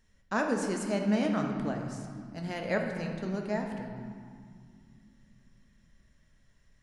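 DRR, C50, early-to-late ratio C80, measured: 2.0 dB, 4.0 dB, 5.5 dB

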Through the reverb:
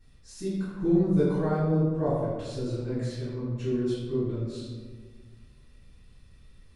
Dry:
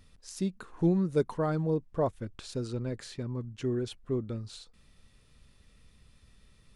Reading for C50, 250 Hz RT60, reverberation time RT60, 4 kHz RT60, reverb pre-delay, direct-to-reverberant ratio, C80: -0.5 dB, 2.0 s, 1.5 s, 0.80 s, 3 ms, -13.5 dB, 1.5 dB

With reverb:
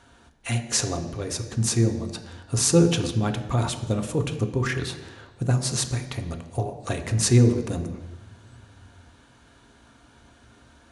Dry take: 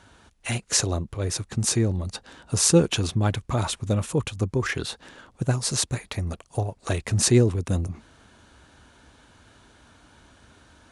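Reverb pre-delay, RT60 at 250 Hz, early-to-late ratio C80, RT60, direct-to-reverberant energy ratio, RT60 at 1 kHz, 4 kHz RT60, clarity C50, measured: 3 ms, 0.95 s, 11.5 dB, 1.1 s, 5.0 dB, 1.1 s, 1.2 s, 10.0 dB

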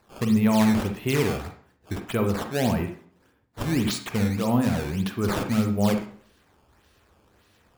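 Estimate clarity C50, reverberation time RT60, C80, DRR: 7.0 dB, 0.50 s, 12.0 dB, 5.0 dB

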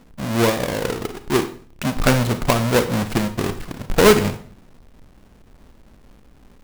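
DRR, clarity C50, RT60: 10.0 dB, 12.0 dB, 0.45 s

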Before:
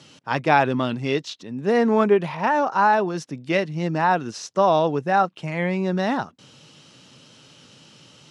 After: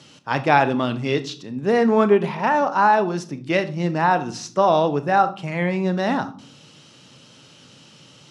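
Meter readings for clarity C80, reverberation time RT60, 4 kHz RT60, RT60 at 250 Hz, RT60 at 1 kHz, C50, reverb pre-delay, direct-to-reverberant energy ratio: 20.0 dB, 0.55 s, 0.35 s, 0.80 s, 0.45 s, 15.5 dB, 28 ms, 11.0 dB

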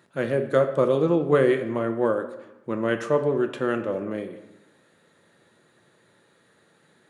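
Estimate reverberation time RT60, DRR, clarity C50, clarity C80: 0.95 s, 5.5 dB, 10.5 dB, 12.5 dB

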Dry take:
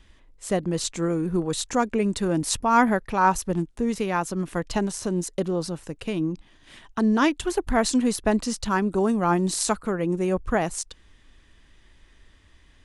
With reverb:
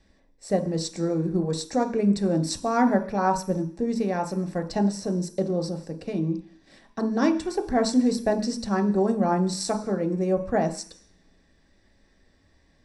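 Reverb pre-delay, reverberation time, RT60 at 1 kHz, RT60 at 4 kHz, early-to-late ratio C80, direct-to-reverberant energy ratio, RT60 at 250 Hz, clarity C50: 3 ms, 0.50 s, 0.50 s, 0.85 s, 16.0 dB, 5.0 dB, 0.50 s, 13.0 dB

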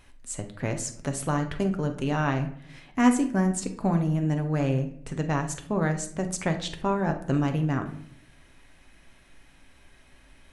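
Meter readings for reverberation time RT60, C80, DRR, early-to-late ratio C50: 0.65 s, 15.0 dB, 5.0 dB, 10.5 dB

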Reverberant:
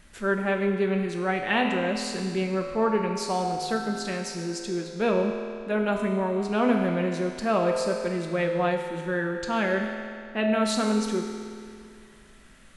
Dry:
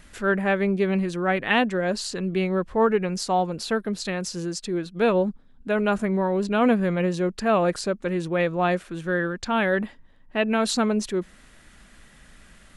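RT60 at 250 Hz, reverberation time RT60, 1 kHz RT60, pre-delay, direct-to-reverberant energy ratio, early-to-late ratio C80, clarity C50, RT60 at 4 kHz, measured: 2.4 s, 2.4 s, 2.4 s, 4 ms, 1.5 dB, 4.5 dB, 3.5 dB, 2.2 s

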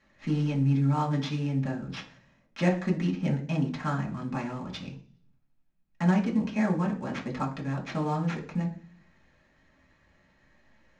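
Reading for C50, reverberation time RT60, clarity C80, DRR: 10.5 dB, 0.45 s, 15.5 dB, -3.0 dB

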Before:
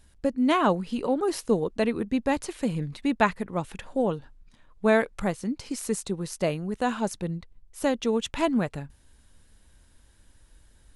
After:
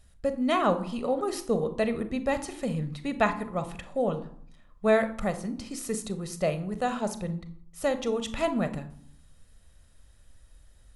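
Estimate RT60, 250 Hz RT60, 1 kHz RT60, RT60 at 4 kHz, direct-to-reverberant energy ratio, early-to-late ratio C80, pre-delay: 0.65 s, 0.80 s, 0.65 s, 0.35 s, 9.5 dB, 16.5 dB, 25 ms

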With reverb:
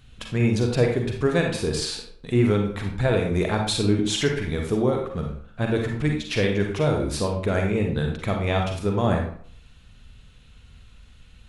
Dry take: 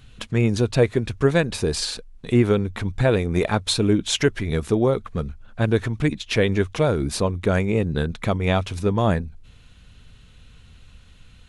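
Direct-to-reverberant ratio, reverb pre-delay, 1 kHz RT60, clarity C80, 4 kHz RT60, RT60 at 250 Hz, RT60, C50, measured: 1.5 dB, 37 ms, 0.55 s, 8.0 dB, 0.40 s, 0.50 s, 0.55 s, 3.5 dB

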